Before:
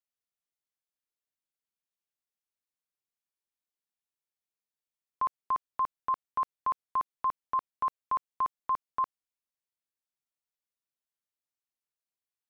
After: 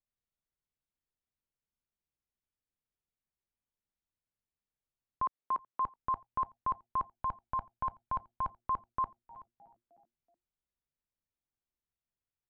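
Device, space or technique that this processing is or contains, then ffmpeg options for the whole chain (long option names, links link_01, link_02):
ducked delay: -filter_complex "[0:a]asettb=1/sr,asplit=3[link_01][link_02][link_03];[link_01]atrim=end=5.264[link_04];[link_02]atrim=start=5.26:end=5.8,asetpts=PTS-STARTPTS,afade=type=in:duration=0.004:curve=qsin,afade=type=out:start_time=0.536:duration=0.004:curve=qsin,highpass=280[link_05];[link_03]atrim=start=5.796[link_06];[link_04][link_05]acrossfade=duration=0.004:curve1=hsin:curve2=qsin[link_07];[link_07][link_06]acrossfade=duration=0.004:curve1=qsin:curve2=hsin,aemphasis=mode=reproduction:type=riaa,asettb=1/sr,asplit=3[link_08][link_09][link_10];[link_08]atrim=end=7.134[link_11];[link_09]atrim=start=7.13:end=8.58,asetpts=PTS-STARTPTS,afade=type=in:duration=0.004:curve=qsin,afade=type=out:start_time=1.446:duration=0.004:curve=qsin,aecho=1:1:1.3:0.57,atrim=end_sample=63945[link_12];[link_10]atrim=start=8.576[link_13];[link_11][link_12]acrossfade=duration=0.004:curve1=hsin:curve2=qsin[link_14];[link_14][link_13]acrossfade=duration=0.004:curve1=qsin:curve2=hsin,asplit=4[link_15][link_16][link_17][link_18];[link_16]adelay=308,afreqshift=-120,volume=-23dB[link_19];[link_17]adelay=616,afreqshift=-240,volume=-28.8dB[link_20];[link_18]adelay=924,afreqshift=-360,volume=-34.7dB[link_21];[link_15][link_19][link_20][link_21]amix=inputs=4:normalize=0,asplit=3[link_22][link_23][link_24];[link_23]adelay=376,volume=-8dB[link_25];[link_24]apad=whole_len=608368[link_26];[link_25][link_26]sidechaincompress=threshold=-47dB:ratio=12:attack=6.1:release=545[link_27];[link_22][link_27]amix=inputs=2:normalize=0,volume=-3dB"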